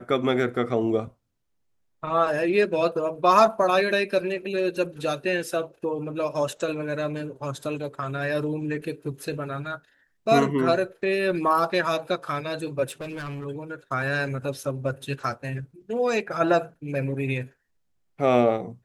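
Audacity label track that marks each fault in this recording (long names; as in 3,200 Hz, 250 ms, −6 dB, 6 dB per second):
12.880000	13.460000	clipping −30.5 dBFS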